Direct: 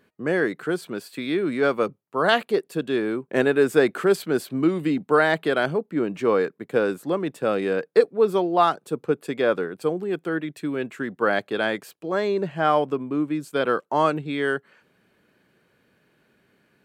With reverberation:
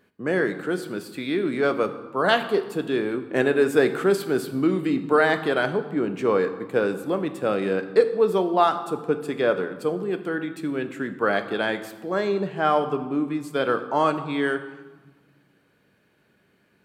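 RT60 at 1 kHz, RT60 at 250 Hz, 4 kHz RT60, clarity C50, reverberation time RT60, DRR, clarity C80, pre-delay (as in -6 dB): 1.3 s, 1.9 s, 0.95 s, 11.5 dB, 1.3 s, 8.0 dB, 13.0 dB, 9 ms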